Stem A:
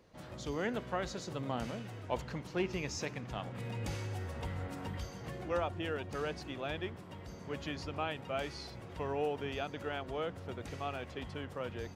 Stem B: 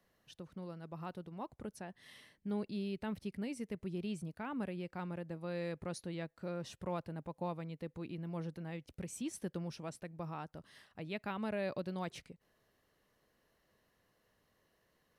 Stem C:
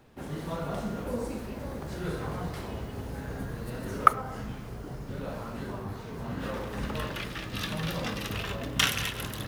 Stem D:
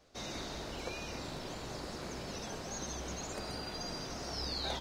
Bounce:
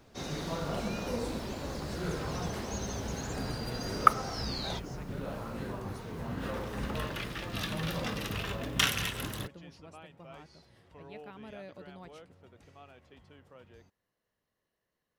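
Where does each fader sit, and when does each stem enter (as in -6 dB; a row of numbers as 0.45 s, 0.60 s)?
-14.5 dB, -9.5 dB, -2.0 dB, 0.0 dB; 1.95 s, 0.00 s, 0.00 s, 0.00 s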